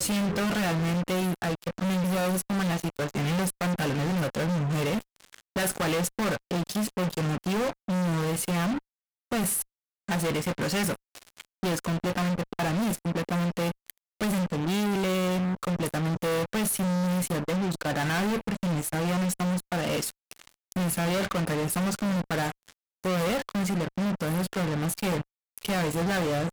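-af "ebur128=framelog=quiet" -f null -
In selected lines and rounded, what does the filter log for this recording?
Integrated loudness:
  I:         -28.2 LUFS
  Threshold: -38.5 LUFS
Loudness range:
  LRA:         2.0 LU
  Threshold: -48.6 LUFS
  LRA low:   -29.5 LUFS
  LRA high:  -27.6 LUFS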